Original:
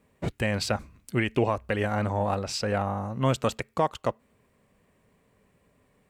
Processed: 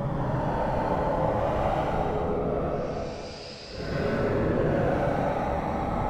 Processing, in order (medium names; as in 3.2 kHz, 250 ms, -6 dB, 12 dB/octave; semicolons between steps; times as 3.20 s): low-pass 1.3 kHz 12 dB/octave; compression 10:1, threshold -29 dBFS, peak gain reduction 11.5 dB; overload inside the chain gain 30.5 dB; whisper effect; Paulstretch 7.3×, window 0.10 s, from 2.09 s; band-passed feedback delay 221 ms, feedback 68%, band-pass 500 Hz, level -9 dB; gated-style reverb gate 440 ms flat, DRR 0 dB; trim +6.5 dB